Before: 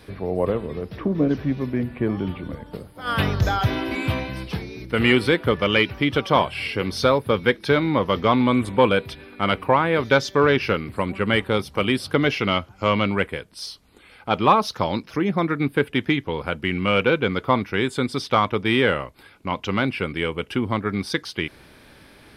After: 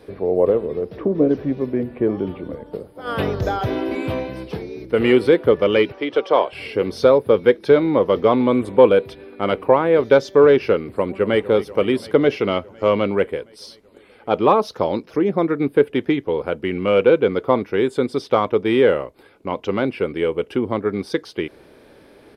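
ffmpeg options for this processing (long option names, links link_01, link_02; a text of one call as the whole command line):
ffmpeg -i in.wav -filter_complex "[0:a]asettb=1/sr,asplit=3[link_01][link_02][link_03];[link_01]atrim=end=5.924[link_04];[link_02]atrim=start=5.92:end=6.53,asetpts=PTS-STARTPTS,afade=type=in:duration=0.004:curve=qsin,afade=type=out:start_time=0.606:duration=0.004:curve=qsin,acrossover=split=320 7600:gain=0.112 1 0.112[link_05][link_06][link_07];[link_05][link_06][link_07]amix=inputs=3:normalize=0[link_08];[link_03]atrim=start=6.526[link_09];[link_04][link_08]acrossfade=duration=0.004:curve1=hsin:curve2=qsin[link_10];[link_10][link_09]acrossfade=duration=0.004:curve1=qsin:curve2=hsin,asplit=2[link_11][link_12];[link_12]afade=type=in:start_time=10.96:duration=0.01,afade=type=out:start_time=11.41:duration=0.01,aecho=0:1:240|480|720|960|1200|1440|1680|1920|2160|2400|2640|2880:0.141254|0.113003|0.0904024|0.0723219|0.0578575|0.046286|0.0370288|0.0296231|0.0236984|0.0189588|0.015167|0.0121336[link_13];[link_11][link_13]amix=inputs=2:normalize=0,equalizer=frequency=450:width=0.82:gain=14,volume=-6dB" out.wav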